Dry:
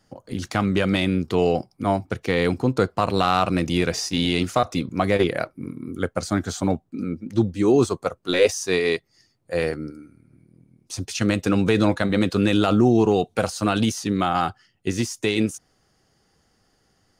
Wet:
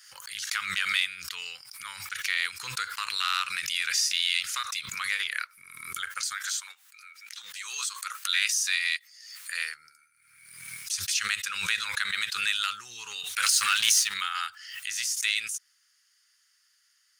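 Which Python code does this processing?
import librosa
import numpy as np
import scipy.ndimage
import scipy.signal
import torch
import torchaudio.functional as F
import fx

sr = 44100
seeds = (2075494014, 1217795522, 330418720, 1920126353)

y = fx.highpass(x, sr, hz=880.0, slope=12, at=(6.33, 9.57))
y = fx.leveller(y, sr, passes=2, at=(13.42, 14.14))
y = scipy.signal.sosfilt(scipy.signal.cheby2(4, 40, 740.0, 'highpass', fs=sr, output='sos'), y)
y = fx.high_shelf(y, sr, hz=7000.0, db=6.5)
y = fx.pre_swell(y, sr, db_per_s=51.0)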